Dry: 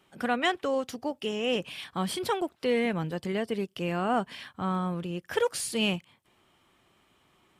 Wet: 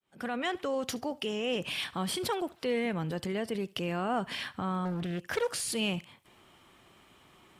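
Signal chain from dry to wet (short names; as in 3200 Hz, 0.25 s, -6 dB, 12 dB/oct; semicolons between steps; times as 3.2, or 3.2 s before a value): opening faded in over 0.66 s; in parallel at 0 dB: negative-ratio compressor -39 dBFS, ratio -1; on the sum: thinning echo 72 ms, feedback 37%, level -22 dB; 4.85–5.72 Doppler distortion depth 0.4 ms; gain -5 dB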